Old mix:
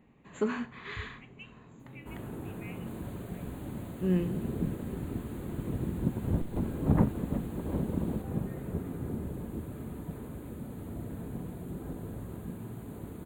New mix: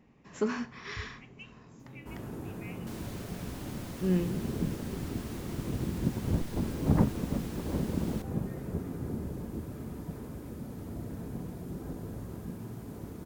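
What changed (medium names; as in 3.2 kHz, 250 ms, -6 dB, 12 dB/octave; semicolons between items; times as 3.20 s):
second sound +9.5 dB; master: remove Butterworth band-stop 5.4 kHz, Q 1.9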